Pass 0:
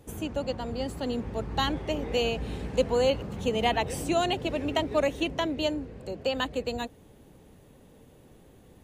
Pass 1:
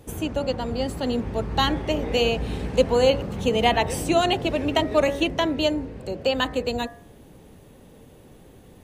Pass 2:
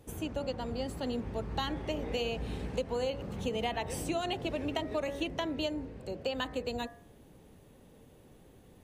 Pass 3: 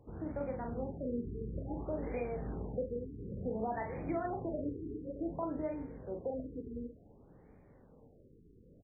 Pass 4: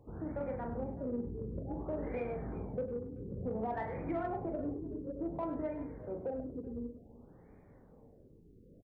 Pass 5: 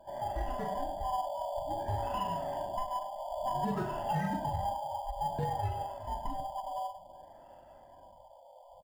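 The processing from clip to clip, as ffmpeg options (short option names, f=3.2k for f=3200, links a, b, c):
-af "bandreject=f=7k:w=26,bandreject=f=69.94:t=h:w=4,bandreject=f=139.88:t=h:w=4,bandreject=f=209.82:t=h:w=4,bandreject=f=279.76:t=h:w=4,bandreject=f=349.7:t=h:w=4,bandreject=f=419.64:t=h:w=4,bandreject=f=489.58:t=h:w=4,bandreject=f=559.52:t=h:w=4,bandreject=f=629.46:t=h:w=4,bandreject=f=699.4:t=h:w=4,bandreject=f=769.34:t=h:w=4,bandreject=f=839.28:t=h:w=4,bandreject=f=909.22:t=h:w=4,bandreject=f=979.16:t=h:w=4,bandreject=f=1.0491k:t=h:w=4,bandreject=f=1.11904k:t=h:w=4,bandreject=f=1.18898k:t=h:w=4,bandreject=f=1.25892k:t=h:w=4,bandreject=f=1.32886k:t=h:w=4,bandreject=f=1.3988k:t=h:w=4,bandreject=f=1.46874k:t=h:w=4,bandreject=f=1.53868k:t=h:w=4,bandreject=f=1.60862k:t=h:w=4,bandreject=f=1.67856k:t=h:w=4,bandreject=f=1.7485k:t=h:w=4,bandreject=f=1.81844k:t=h:w=4,bandreject=f=1.88838k:t=h:w=4,bandreject=f=1.95832k:t=h:w=4,bandreject=f=2.02826k:t=h:w=4,bandreject=f=2.0982k:t=h:w=4,volume=6dB"
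-af "acompressor=threshold=-21dB:ratio=6,volume=-8.5dB"
-filter_complex "[0:a]asplit=2[a][b];[b]aecho=0:1:24|42|74:0.299|0.531|0.178[c];[a][c]amix=inputs=2:normalize=0,afftfilt=real='re*lt(b*sr/1024,460*pow(2500/460,0.5+0.5*sin(2*PI*0.56*pts/sr)))':imag='im*lt(b*sr/1024,460*pow(2500/460,0.5+0.5*sin(2*PI*0.56*pts/sr)))':win_size=1024:overlap=0.75,volume=-4dB"
-filter_complex "[0:a]asplit=2[a][b];[b]asoftclip=type=tanh:threshold=-35.5dB,volume=-5dB[c];[a][c]amix=inputs=2:normalize=0,aecho=1:1:101|382:0.282|0.106,volume=-3dB"
-filter_complex "[0:a]afftfilt=real='real(if(lt(b,1008),b+24*(1-2*mod(floor(b/24),2)),b),0)':imag='imag(if(lt(b,1008),b+24*(1-2*mod(floor(b/24),2)),b),0)':win_size=2048:overlap=0.75,asplit=2[a][b];[b]acrusher=samples=11:mix=1:aa=0.000001,volume=-11dB[c];[a][c]amix=inputs=2:normalize=0,volume=2dB"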